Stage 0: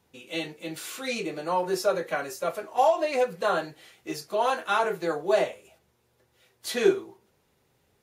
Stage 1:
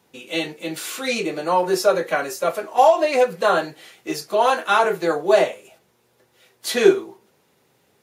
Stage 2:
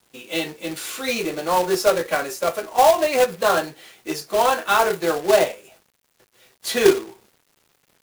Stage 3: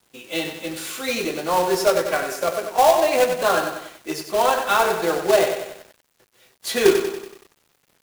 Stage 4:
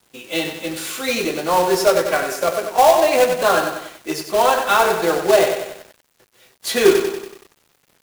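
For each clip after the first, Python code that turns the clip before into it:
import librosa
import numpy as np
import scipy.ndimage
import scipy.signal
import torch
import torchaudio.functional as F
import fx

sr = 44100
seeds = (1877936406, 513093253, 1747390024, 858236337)

y1 = scipy.signal.sosfilt(scipy.signal.butter(2, 150.0, 'highpass', fs=sr, output='sos'), x)
y1 = y1 * librosa.db_to_amplitude(7.5)
y2 = fx.quant_companded(y1, sr, bits=4)
y2 = y2 * librosa.db_to_amplitude(-1.0)
y3 = fx.echo_crushed(y2, sr, ms=94, feedback_pct=55, bits=7, wet_db=-7.0)
y3 = y3 * librosa.db_to_amplitude(-1.0)
y4 = 10.0 ** (-3.0 / 20.0) * np.tanh(y3 / 10.0 ** (-3.0 / 20.0))
y4 = y4 * librosa.db_to_amplitude(3.5)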